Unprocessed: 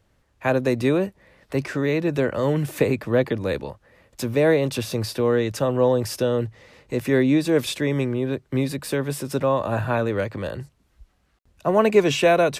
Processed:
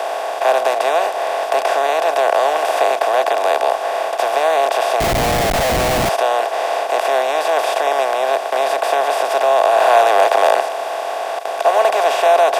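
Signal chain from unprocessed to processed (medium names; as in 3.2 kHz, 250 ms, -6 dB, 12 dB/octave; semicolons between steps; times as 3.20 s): spectral levelling over time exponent 0.2; 9.80–10.60 s: waveshaping leveller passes 1; ladder high-pass 670 Hz, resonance 70%; 5.00–6.09 s: Schmitt trigger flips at -24 dBFS; trim +5.5 dB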